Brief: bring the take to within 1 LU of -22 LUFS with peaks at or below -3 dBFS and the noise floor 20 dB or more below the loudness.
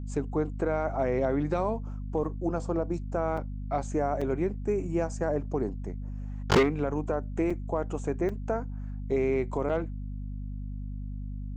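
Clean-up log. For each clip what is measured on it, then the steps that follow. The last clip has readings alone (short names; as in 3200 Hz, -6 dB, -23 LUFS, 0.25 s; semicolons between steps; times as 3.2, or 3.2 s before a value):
dropouts 6; longest dropout 4.8 ms; hum 50 Hz; harmonics up to 250 Hz; hum level -33 dBFS; loudness -30.5 LUFS; peak -15.5 dBFS; loudness target -22.0 LUFS
-> interpolate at 2.24/3.37/4.21/7.5/8.29/9.69, 4.8 ms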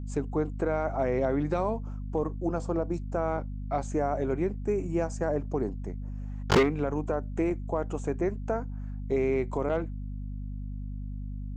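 dropouts 0; hum 50 Hz; harmonics up to 250 Hz; hum level -33 dBFS
-> notches 50/100/150/200/250 Hz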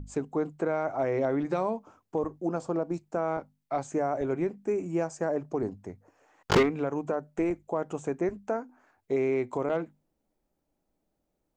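hum none; loudness -30.5 LUFS; peak -14.5 dBFS; loudness target -22.0 LUFS
-> gain +8.5 dB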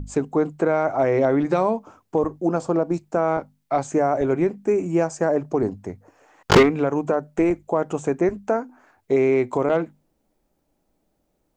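loudness -22.0 LUFS; peak -6.0 dBFS; noise floor -71 dBFS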